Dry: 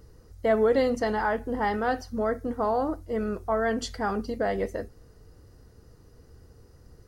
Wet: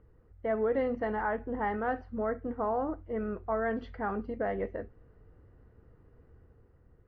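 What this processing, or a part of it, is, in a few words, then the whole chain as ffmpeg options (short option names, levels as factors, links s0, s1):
action camera in a waterproof case: -af "lowpass=f=2400:w=0.5412,lowpass=f=2400:w=1.3066,dynaudnorm=f=170:g=9:m=1.5,volume=0.376" -ar 16000 -c:a aac -b:a 48k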